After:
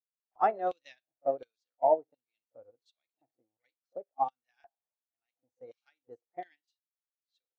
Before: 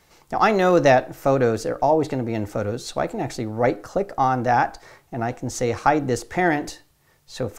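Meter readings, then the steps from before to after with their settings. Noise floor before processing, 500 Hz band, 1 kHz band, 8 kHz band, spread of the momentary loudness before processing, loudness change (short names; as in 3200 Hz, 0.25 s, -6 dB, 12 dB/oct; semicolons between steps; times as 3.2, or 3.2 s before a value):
-60 dBFS, -13.5 dB, -12.5 dB, under -40 dB, 11 LU, -9.5 dB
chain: LFO band-pass square 1.4 Hz 710–3400 Hz; pre-echo 41 ms -13.5 dB; spectral noise reduction 11 dB; upward expander 2.5:1, over -44 dBFS; gain -1.5 dB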